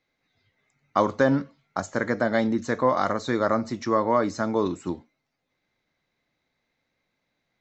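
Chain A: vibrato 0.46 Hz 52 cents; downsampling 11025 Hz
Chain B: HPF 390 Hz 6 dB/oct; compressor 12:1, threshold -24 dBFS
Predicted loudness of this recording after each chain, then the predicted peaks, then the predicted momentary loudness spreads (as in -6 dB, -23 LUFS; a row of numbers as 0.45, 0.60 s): -25.0, -31.5 LUFS; -7.5, -11.5 dBFS; 10, 7 LU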